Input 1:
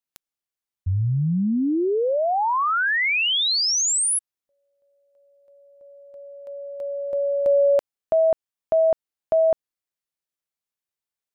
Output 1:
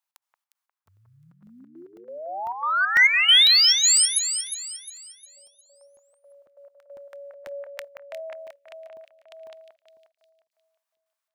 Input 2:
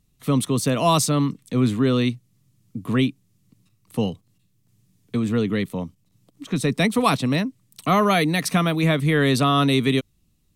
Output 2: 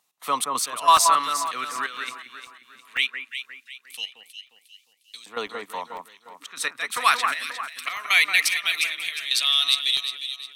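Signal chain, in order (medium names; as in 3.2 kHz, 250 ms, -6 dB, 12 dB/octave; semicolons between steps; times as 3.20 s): trance gate "x.xx.x..xxx" 137 bpm -12 dB; LFO high-pass saw up 0.19 Hz 850–4700 Hz; in parallel at -8 dB: saturation -19 dBFS; on the sum: echo whose repeats swap between lows and highs 178 ms, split 2 kHz, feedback 61%, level -4.5 dB; crackling interface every 0.50 s, samples 64, zero, from 0.97 s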